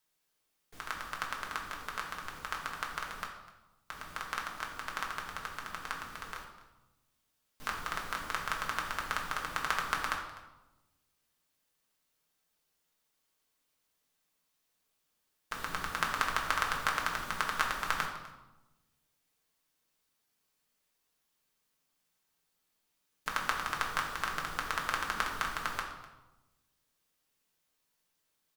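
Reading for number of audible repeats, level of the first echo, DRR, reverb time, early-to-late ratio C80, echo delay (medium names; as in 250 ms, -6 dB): 1, -18.5 dB, -1.0 dB, 1.0 s, 7.5 dB, 251 ms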